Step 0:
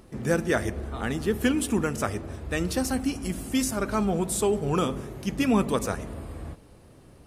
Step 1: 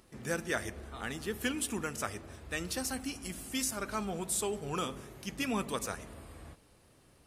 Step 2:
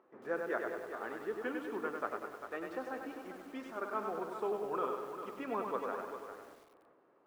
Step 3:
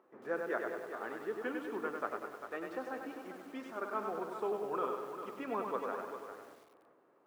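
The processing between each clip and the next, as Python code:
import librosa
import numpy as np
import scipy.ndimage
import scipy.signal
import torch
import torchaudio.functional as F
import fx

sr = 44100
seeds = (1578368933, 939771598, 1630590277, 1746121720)

y1 = fx.tilt_shelf(x, sr, db=-5.0, hz=970.0)
y1 = F.gain(torch.from_numpy(y1), -8.0).numpy()
y2 = scipy.signal.sosfilt(scipy.signal.cheby1(2, 1.0, [370.0, 1300.0], 'bandpass', fs=sr, output='sos'), y1)
y2 = y2 + 10.0 ** (-9.5 / 20.0) * np.pad(y2, (int(399 * sr / 1000.0), 0))[:len(y2)]
y2 = fx.echo_crushed(y2, sr, ms=98, feedback_pct=55, bits=10, wet_db=-4.5)
y3 = scipy.signal.sosfilt(scipy.signal.butter(2, 86.0, 'highpass', fs=sr, output='sos'), y2)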